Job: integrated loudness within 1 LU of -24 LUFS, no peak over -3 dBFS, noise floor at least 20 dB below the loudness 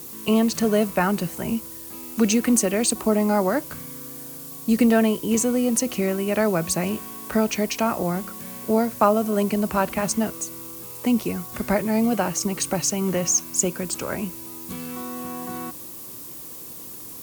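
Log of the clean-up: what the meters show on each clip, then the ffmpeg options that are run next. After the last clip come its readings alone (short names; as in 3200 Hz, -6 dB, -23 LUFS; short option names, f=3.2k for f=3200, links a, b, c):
noise floor -38 dBFS; noise floor target -43 dBFS; loudness -23.0 LUFS; peak -4.0 dBFS; loudness target -24.0 LUFS
-> -af "afftdn=nr=6:nf=-38"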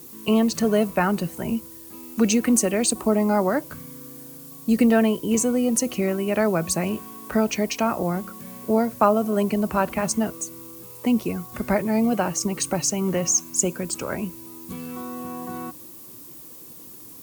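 noise floor -43 dBFS; loudness -23.0 LUFS; peak -4.0 dBFS; loudness target -24.0 LUFS
-> -af "volume=-1dB"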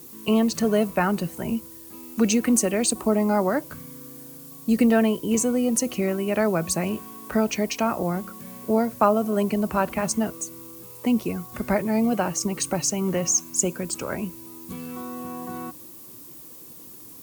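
loudness -24.0 LUFS; peak -5.0 dBFS; noise floor -44 dBFS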